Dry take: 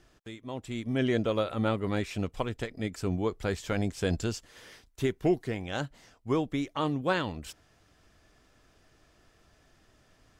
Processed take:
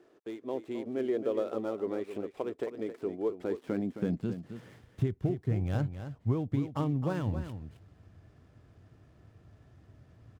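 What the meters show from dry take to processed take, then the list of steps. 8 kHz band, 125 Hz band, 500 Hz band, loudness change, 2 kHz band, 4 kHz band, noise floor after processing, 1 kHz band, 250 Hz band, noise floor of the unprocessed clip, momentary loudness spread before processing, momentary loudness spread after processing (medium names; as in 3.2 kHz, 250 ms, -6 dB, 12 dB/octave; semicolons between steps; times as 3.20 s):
under -15 dB, +1.0 dB, -2.0 dB, -2.5 dB, -12.0 dB, under -10 dB, -62 dBFS, -7.5 dB, -2.5 dB, -65 dBFS, 14 LU, 11 LU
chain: dead-time distortion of 0.1 ms; tilt EQ -3 dB/octave; compression 6:1, threshold -27 dBFS, peak gain reduction 11.5 dB; high-pass sweep 390 Hz -> 100 Hz, 3.26–4.92 s; delay 266 ms -10 dB; trim -2.5 dB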